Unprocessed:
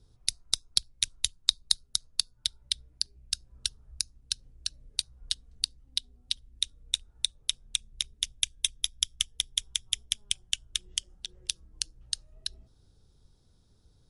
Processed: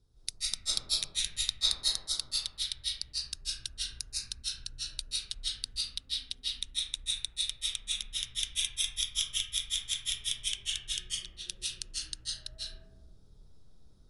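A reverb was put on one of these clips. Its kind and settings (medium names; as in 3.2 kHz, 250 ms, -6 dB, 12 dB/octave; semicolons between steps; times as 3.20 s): algorithmic reverb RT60 1.3 s, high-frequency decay 0.25×, pre-delay 120 ms, DRR -9 dB; trim -8.5 dB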